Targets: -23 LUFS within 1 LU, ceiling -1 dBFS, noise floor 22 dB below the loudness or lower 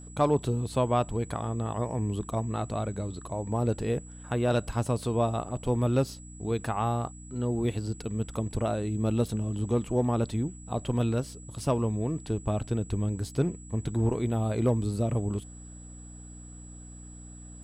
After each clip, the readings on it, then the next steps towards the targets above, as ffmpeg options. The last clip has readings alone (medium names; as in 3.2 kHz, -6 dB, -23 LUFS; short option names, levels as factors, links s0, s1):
hum 60 Hz; highest harmonic 300 Hz; hum level -45 dBFS; steady tone 7.8 kHz; tone level -50 dBFS; loudness -30.0 LUFS; peak level -13.0 dBFS; loudness target -23.0 LUFS
-> -af "bandreject=f=60:t=h:w=4,bandreject=f=120:t=h:w=4,bandreject=f=180:t=h:w=4,bandreject=f=240:t=h:w=4,bandreject=f=300:t=h:w=4"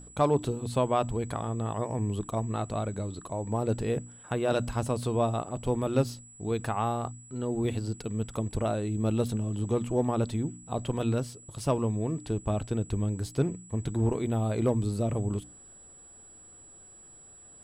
hum not found; steady tone 7.8 kHz; tone level -50 dBFS
-> -af "bandreject=f=7800:w=30"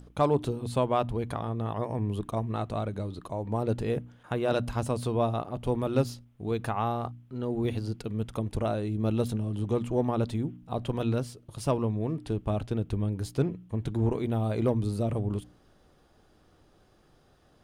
steady tone not found; loudness -30.5 LUFS; peak level -12.5 dBFS; loudness target -23.0 LUFS
-> -af "volume=2.37"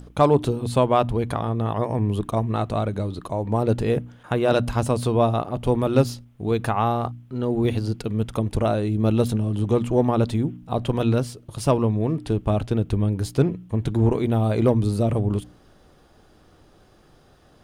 loudness -23.0 LUFS; peak level -5.0 dBFS; noise floor -54 dBFS